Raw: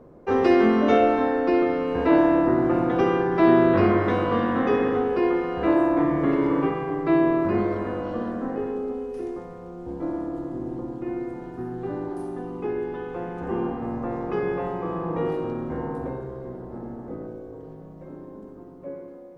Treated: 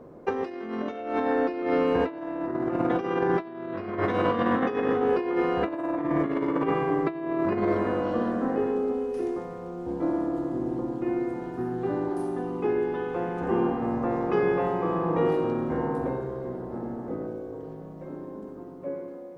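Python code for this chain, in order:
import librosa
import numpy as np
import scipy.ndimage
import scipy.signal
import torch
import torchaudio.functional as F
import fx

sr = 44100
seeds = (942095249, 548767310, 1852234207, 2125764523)

y = fx.over_compress(x, sr, threshold_db=-24.0, ratio=-0.5)
y = fx.low_shelf(y, sr, hz=80.0, db=-10.5)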